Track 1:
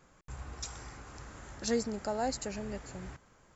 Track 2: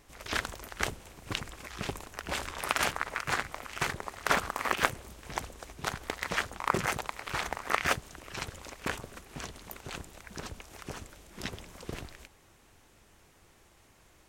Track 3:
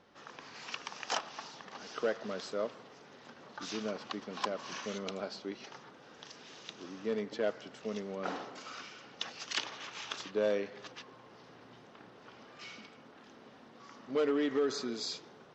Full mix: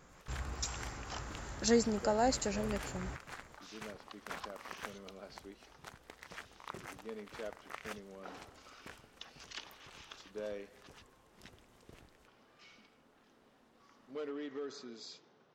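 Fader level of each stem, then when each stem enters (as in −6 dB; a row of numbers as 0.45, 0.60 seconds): +2.5, −18.0, −11.5 decibels; 0.00, 0.00, 0.00 seconds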